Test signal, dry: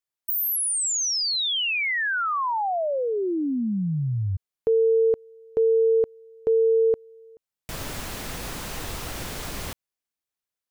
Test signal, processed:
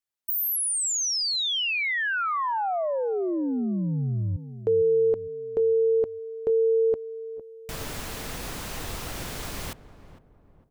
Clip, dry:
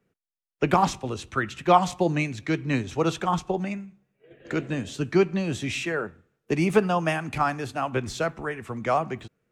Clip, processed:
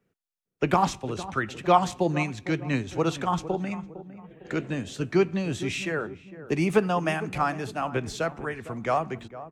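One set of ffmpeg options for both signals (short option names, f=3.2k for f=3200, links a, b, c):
-filter_complex "[0:a]asplit=2[a][b];[b]adelay=456,lowpass=f=880:p=1,volume=-13dB,asplit=2[c][d];[d]adelay=456,lowpass=f=880:p=1,volume=0.44,asplit=2[e][f];[f]adelay=456,lowpass=f=880:p=1,volume=0.44,asplit=2[g][h];[h]adelay=456,lowpass=f=880:p=1,volume=0.44[i];[a][c][e][g][i]amix=inputs=5:normalize=0,volume=-1.5dB"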